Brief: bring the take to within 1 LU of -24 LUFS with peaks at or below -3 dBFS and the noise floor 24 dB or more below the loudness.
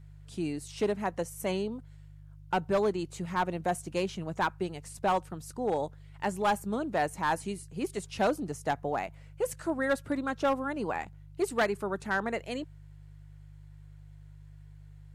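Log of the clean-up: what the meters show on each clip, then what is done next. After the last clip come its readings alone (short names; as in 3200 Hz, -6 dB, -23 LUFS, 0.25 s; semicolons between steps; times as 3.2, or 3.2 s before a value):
clipped 0.6%; flat tops at -21.0 dBFS; hum 50 Hz; harmonics up to 150 Hz; hum level -48 dBFS; loudness -32.0 LUFS; peak -21.0 dBFS; loudness target -24.0 LUFS
-> clip repair -21 dBFS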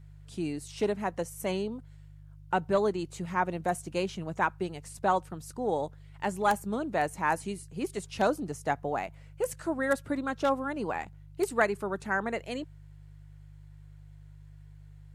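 clipped 0.0%; hum 50 Hz; harmonics up to 150 Hz; hum level -48 dBFS
-> de-hum 50 Hz, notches 3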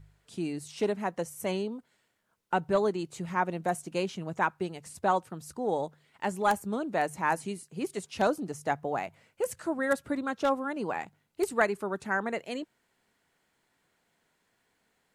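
hum none; loudness -31.5 LUFS; peak -12.0 dBFS; loudness target -24.0 LUFS
-> gain +7.5 dB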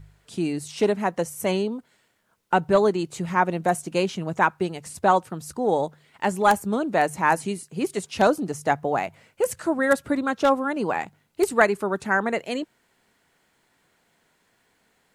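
loudness -24.0 LUFS; peak -4.5 dBFS; noise floor -67 dBFS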